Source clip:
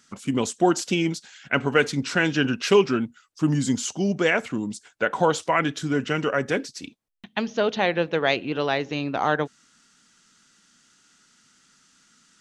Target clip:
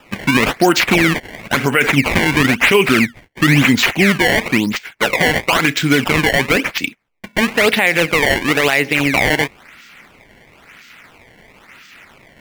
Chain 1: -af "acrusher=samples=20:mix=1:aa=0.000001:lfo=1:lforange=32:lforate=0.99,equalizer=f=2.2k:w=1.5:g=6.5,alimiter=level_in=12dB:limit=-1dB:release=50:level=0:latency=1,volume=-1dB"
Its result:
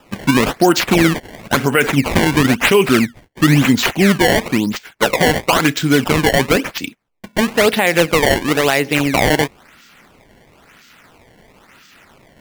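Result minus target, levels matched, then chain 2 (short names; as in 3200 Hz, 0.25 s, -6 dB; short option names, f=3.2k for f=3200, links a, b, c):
2000 Hz band -3.0 dB
-af "acrusher=samples=20:mix=1:aa=0.000001:lfo=1:lforange=32:lforate=0.99,equalizer=f=2.2k:w=1.5:g=15,alimiter=level_in=12dB:limit=-1dB:release=50:level=0:latency=1,volume=-1dB"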